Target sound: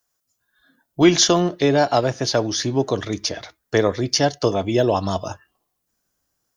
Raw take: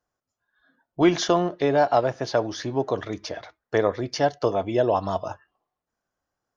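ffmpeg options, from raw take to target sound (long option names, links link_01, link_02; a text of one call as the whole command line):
ffmpeg -i in.wav -filter_complex "[0:a]acrossover=split=390[link_01][link_02];[link_01]dynaudnorm=framelen=190:gausssize=3:maxgain=10.5dB[link_03];[link_03][link_02]amix=inputs=2:normalize=0,crystalizer=i=8:c=0,volume=-3dB" out.wav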